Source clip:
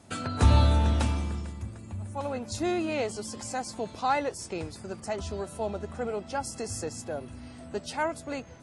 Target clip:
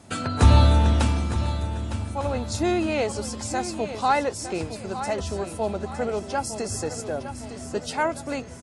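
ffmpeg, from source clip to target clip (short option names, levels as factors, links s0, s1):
-af "aecho=1:1:909|1818|2727|3636:0.282|0.121|0.0521|0.0224,volume=1.78"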